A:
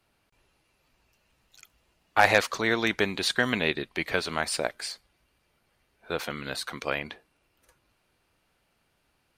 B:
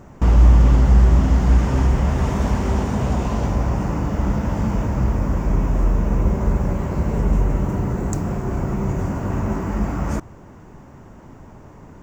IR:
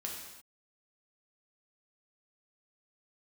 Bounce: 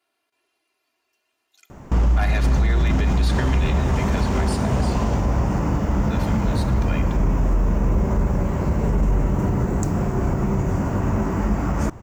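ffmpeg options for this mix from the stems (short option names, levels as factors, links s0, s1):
-filter_complex "[0:a]highpass=310,aecho=1:1:2.9:0.95,volume=0.398,asplit=2[s0][s1];[s1]volume=0.447[s2];[1:a]alimiter=limit=0.266:level=0:latency=1:release=11,adelay=1700,volume=1.26[s3];[2:a]atrim=start_sample=2205[s4];[s2][s4]afir=irnorm=-1:irlink=0[s5];[s0][s3][s5]amix=inputs=3:normalize=0,alimiter=limit=0.266:level=0:latency=1:release=112"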